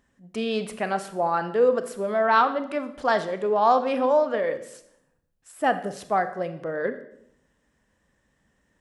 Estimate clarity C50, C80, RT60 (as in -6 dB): 12.5 dB, 15.5 dB, 0.75 s